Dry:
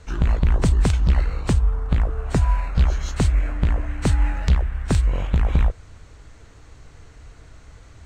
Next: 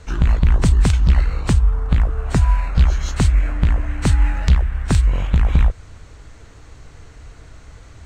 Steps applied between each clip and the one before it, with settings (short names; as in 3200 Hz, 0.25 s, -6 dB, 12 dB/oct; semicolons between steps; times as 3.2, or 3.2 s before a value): dynamic EQ 500 Hz, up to -5 dB, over -36 dBFS, Q 0.8; gain +4 dB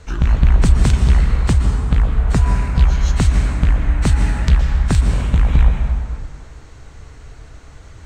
plate-style reverb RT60 2.2 s, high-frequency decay 0.6×, pre-delay 0.105 s, DRR 3.5 dB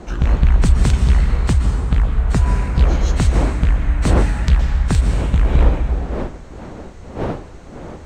wind noise 480 Hz -28 dBFS; gain -1 dB